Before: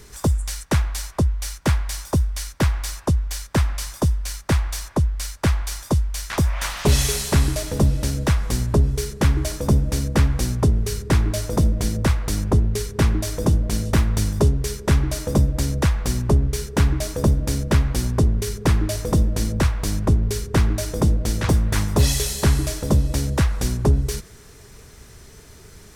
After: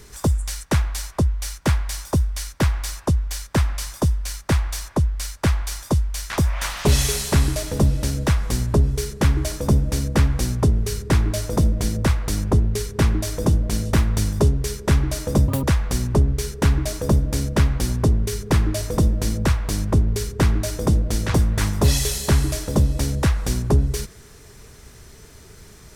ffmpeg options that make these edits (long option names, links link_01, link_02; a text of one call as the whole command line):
ffmpeg -i in.wav -filter_complex "[0:a]asplit=3[link_01][link_02][link_03];[link_01]atrim=end=15.484[link_04];[link_02]atrim=start=15.48:end=15.78,asetpts=PTS-STARTPTS,asetrate=86436,aresample=44100[link_05];[link_03]atrim=start=15.776[link_06];[link_04][link_05]acrossfade=duration=0.004:curve1=hsin:curve2=hsin[link_07];[link_07][link_06]acrossfade=duration=0.004:curve1=hsin:curve2=hsin" out.wav